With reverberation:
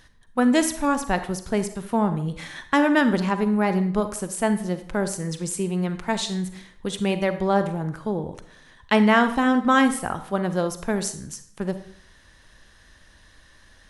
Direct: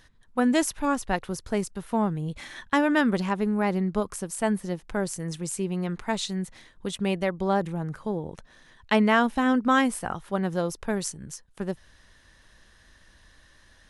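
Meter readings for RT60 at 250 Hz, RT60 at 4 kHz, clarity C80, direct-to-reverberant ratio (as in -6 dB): 0.65 s, 0.50 s, 14.5 dB, 10.0 dB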